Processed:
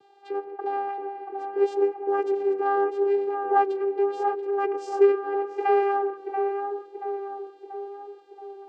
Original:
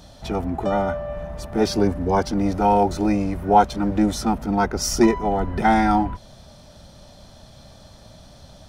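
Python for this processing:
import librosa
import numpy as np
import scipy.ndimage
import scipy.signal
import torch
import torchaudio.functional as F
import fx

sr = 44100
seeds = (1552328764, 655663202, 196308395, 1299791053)

y = scipy.signal.sosfilt(scipy.signal.butter(2, 3100.0, 'lowpass', fs=sr, output='sos'), x)
y = fx.vocoder(y, sr, bands=8, carrier='saw', carrier_hz=399.0)
y = fx.echo_tape(y, sr, ms=682, feedback_pct=65, wet_db=-4.0, lp_hz=1200.0, drive_db=2.0, wow_cents=35)
y = y * librosa.db_to_amplitude(-4.0)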